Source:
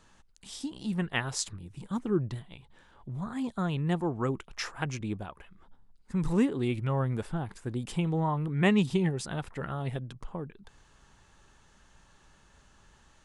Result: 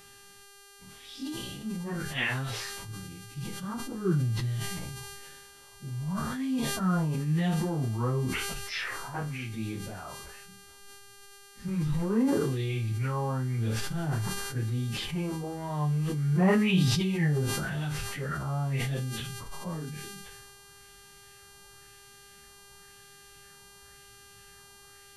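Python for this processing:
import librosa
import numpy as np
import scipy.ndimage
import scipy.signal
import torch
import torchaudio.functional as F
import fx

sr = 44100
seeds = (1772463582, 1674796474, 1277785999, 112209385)

y = fx.graphic_eq_10(x, sr, hz=(125, 1000, 2000), db=(9, -4, 4))
y = fx.stretch_vocoder_free(y, sr, factor=1.9)
y = fx.filter_lfo_lowpass(y, sr, shape='sine', hz=0.96, low_hz=960.0, high_hz=5900.0, q=2.2)
y = fx.dmg_buzz(y, sr, base_hz=400.0, harmonics=31, level_db=-52.0, tilt_db=-2, odd_only=False)
y = fx.room_flutter(y, sr, wall_m=4.6, rt60_s=0.21)
y = fx.sustainer(y, sr, db_per_s=23.0)
y = y * 10.0 ** (-2.5 / 20.0)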